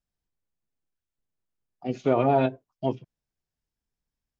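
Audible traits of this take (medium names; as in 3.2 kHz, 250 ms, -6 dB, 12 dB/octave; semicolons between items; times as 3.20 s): noise floor -89 dBFS; spectral tilt -5.0 dB/octave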